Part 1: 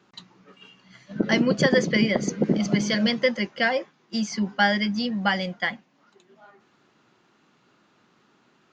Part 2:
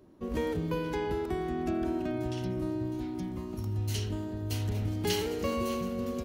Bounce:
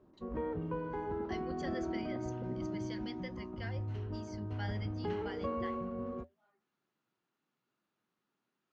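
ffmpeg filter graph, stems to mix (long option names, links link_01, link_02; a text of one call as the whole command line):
ffmpeg -i stem1.wav -i stem2.wav -filter_complex "[0:a]volume=-19.5dB[link_01];[1:a]lowpass=frequency=1200:width_type=q:width=1.5,volume=-2.5dB[link_02];[link_01][link_02]amix=inputs=2:normalize=0,flanger=delay=4.6:depth=6.2:regen=-77:speed=0.3:shape=triangular" out.wav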